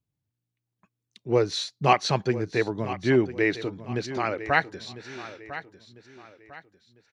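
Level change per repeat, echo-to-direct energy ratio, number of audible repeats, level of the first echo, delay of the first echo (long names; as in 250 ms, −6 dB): −9.0 dB, −13.5 dB, 3, −14.0 dB, 1,000 ms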